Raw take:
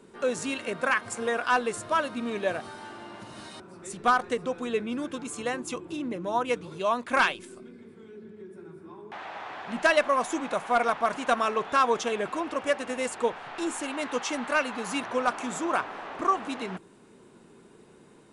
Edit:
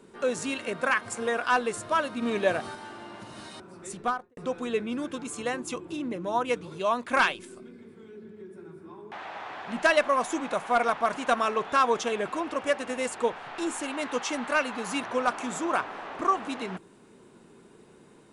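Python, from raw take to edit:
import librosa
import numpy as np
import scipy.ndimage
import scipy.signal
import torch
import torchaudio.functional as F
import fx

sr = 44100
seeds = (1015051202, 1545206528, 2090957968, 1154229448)

y = fx.studio_fade_out(x, sr, start_s=3.89, length_s=0.48)
y = fx.edit(y, sr, fx.clip_gain(start_s=2.22, length_s=0.53, db=3.5), tone=tone)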